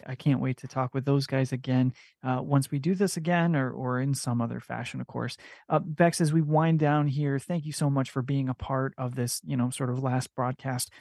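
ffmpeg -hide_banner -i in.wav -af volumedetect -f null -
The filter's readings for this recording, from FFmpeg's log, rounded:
mean_volume: -27.5 dB
max_volume: -7.0 dB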